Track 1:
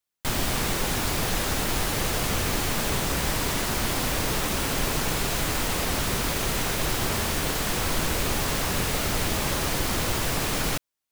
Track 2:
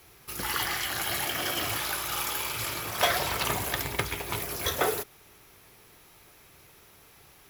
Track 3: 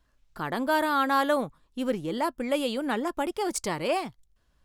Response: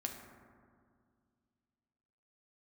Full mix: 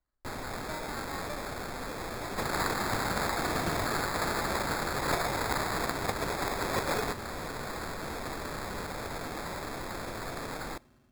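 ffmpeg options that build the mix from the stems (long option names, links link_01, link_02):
-filter_complex "[0:a]lowpass=frequency=11000:width=0.5412,lowpass=frequency=11000:width=1.3066,volume=-10.5dB,asplit=2[link_01][link_02];[link_02]volume=-17.5dB[link_03];[1:a]highshelf=frequency=4700:gain=9.5,adelay=2100,volume=2.5dB[link_04];[2:a]volume=-17.5dB[link_05];[3:a]atrim=start_sample=2205[link_06];[link_03][link_06]afir=irnorm=-1:irlink=0[link_07];[link_01][link_04][link_05][link_07]amix=inputs=4:normalize=0,acrossover=split=290|2700[link_08][link_09][link_10];[link_08]acompressor=threshold=-43dB:ratio=4[link_11];[link_09]acompressor=threshold=-32dB:ratio=4[link_12];[link_10]acompressor=threshold=-32dB:ratio=4[link_13];[link_11][link_12][link_13]amix=inputs=3:normalize=0,acrusher=samples=15:mix=1:aa=0.000001"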